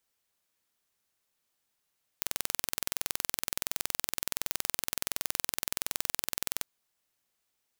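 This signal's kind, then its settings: pulse train 21.4/s, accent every 0, -2.5 dBFS 4.42 s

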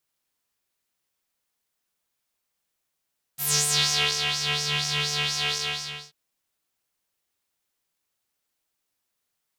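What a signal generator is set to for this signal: synth patch with filter wobble D3, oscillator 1 triangle, oscillator 2 square, interval 0 st, oscillator 2 level -11 dB, filter bandpass, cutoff 3800 Hz, Q 3.6, filter envelope 1.5 oct, filter decay 0.56 s, filter sustain 5%, attack 40 ms, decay 0.83 s, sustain -8 dB, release 0.59 s, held 2.15 s, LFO 4.2 Hz, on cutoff 0.5 oct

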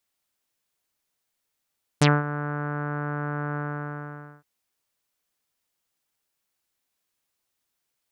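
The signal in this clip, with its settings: synth note saw D3 24 dB/oct, low-pass 1500 Hz, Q 3.6, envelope 3 oct, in 0.08 s, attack 8.8 ms, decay 0.21 s, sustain -14.5 dB, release 0.87 s, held 1.55 s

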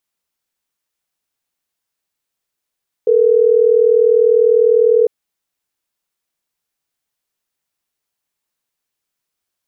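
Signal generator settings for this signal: call progress tone ringback tone, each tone -11 dBFS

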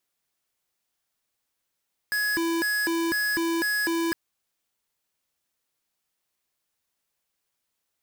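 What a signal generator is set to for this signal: siren hi-lo 333–1680 Hz 2/s square -25.5 dBFS 2.01 s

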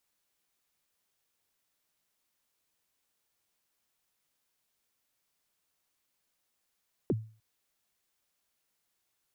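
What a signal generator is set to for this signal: kick drum length 0.30 s, from 470 Hz, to 110 Hz, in 36 ms, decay 0.39 s, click off, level -22 dB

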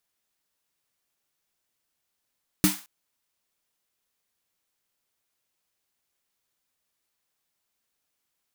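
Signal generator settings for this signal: snare drum length 0.22 s, tones 190 Hz, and 300 Hz, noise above 760 Hz, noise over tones -4.5 dB, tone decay 0.19 s, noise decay 0.37 s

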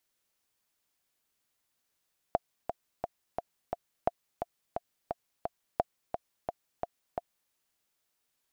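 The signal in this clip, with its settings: metronome 174 bpm, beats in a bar 5, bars 3, 694 Hz, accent 7 dB -12 dBFS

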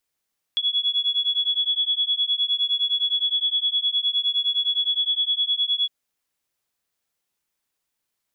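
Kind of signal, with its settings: beating tones 3370 Hz, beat 9.7 Hz, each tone -23 dBFS 5.31 s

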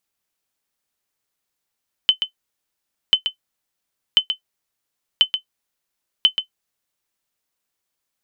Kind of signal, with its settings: sonar ping 3050 Hz, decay 0.10 s, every 1.04 s, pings 5, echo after 0.13 s, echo -8.5 dB -3.5 dBFS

